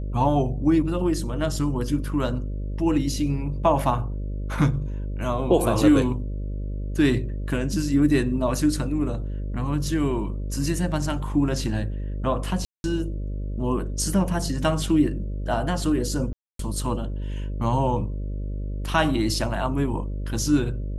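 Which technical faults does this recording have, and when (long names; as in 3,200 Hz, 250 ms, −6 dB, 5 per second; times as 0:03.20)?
mains buzz 50 Hz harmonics 12 −29 dBFS
0:12.65–0:12.84: drop-out 191 ms
0:16.33–0:16.59: drop-out 263 ms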